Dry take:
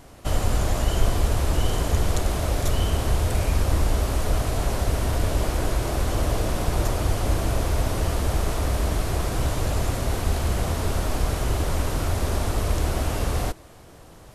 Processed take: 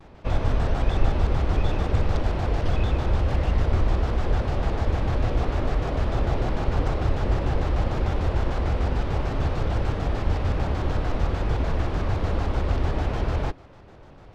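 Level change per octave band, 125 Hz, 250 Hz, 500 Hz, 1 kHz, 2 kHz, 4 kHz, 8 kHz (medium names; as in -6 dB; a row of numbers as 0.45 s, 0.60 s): 0.0 dB, 0.0 dB, -1.0 dB, -0.5 dB, -2.0 dB, -6.5 dB, -18.0 dB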